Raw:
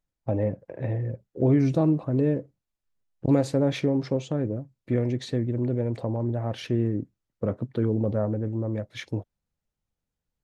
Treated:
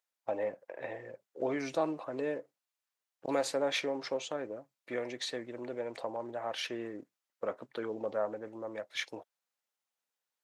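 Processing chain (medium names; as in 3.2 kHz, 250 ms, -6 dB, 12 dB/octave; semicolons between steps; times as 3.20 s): high-pass 770 Hz 12 dB/octave; trim +2 dB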